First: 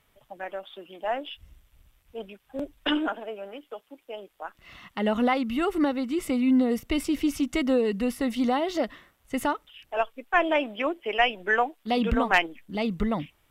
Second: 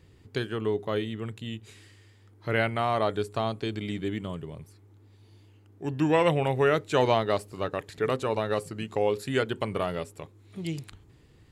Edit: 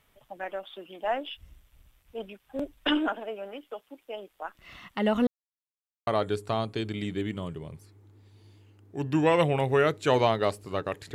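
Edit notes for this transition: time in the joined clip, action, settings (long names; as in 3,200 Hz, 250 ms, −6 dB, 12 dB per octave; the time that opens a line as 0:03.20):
first
0:05.27–0:06.07: silence
0:06.07: continue with second from 0:02.94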